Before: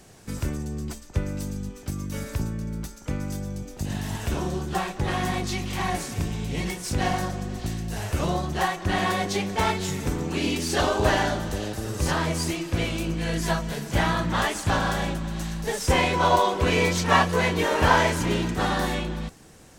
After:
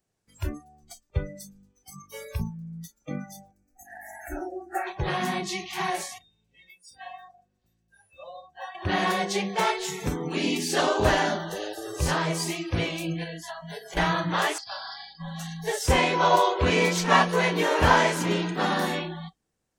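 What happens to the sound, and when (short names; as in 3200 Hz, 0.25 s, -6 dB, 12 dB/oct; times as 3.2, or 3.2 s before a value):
3.51–4.87 fixed phaser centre 690 Hz, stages 8
6.18–8.75 resonator 530 Hz, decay 0.19 s, harmonics odd, mix 80%
13.23–13.97 compressor 20:1, threshold -29 dBFS
14.58–15.2 ladder low-pass 5000 Hz, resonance 85%
whole clip: de-hum 46.86 Hz, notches 7; spectral noise reduction 29 dB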